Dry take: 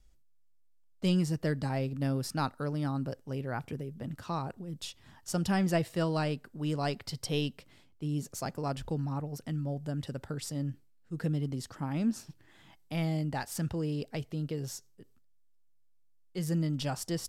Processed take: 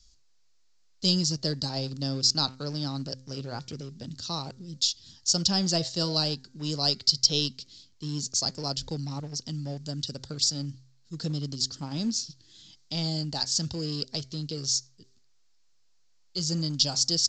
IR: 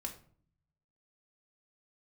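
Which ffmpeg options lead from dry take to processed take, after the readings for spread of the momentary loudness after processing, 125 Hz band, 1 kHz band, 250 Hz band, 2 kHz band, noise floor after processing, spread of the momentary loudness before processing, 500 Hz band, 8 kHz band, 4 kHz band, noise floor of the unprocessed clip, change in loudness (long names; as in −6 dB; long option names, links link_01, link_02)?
14 LU, 0.0 dB, −1.5 dB, −0.5 dB, −4.0 dB, −61 dBFS, 10 LU, −1.0 dB, +14.5 dB, +17.5 dB, −62 dBFS, +6.0 dB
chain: -filter_complex "[0:a]highshelf=frequency=3100:width_type=q:width=3:gain=13.5,bandreject=frequency=130.3:width_type=h:width=4,bandreject=frequency=260.6:width_type=h:width=4,bandreject=frequency=390.9:width_type=h:width=4,bandreject=frequency=521.2:width_type=h:width=4,bandreject=frequency=651.5:width_type=h:width=4,bandreject=frequency=781.8:width_type=h:width=4,bandreject=frequency=912.1:width_type=h:width=4,bandreject=frequency=1042.4:width_type=h:width=4,bandreject=frequency=1172.7:width_type=h:width=4,bandreject=frequency=1303:width_type=h:width=4,bandreject=frequency=1433.3:width_type=h:width=4,bandreject=frequency=1563.6:width_type=h:width=4,bandreject=frequency=1693.9:width_type=h:width=4,bandreject=frequency=1824.2:width_type=h:width=4,bandreject=frequency=1954.5:width_type=h:width=4,bandreject=frequency=2084.8:width_type=h:width=4,bandreject=frequency=2215.1:width_type=h:width=4,bandreject=frequency=2345.4:width_type=h:width=4,acrossover=split=460|1400[link_01][link_02][link_03];[link_02]aeval=exprs='val(0)*gte(abs(val(0)),0.00376)':channel_layout=same[link_04];[link_01][link_04][link_03]amix=inputs=3:normalize=0" -ar 16000 -c:a pcm_mulaw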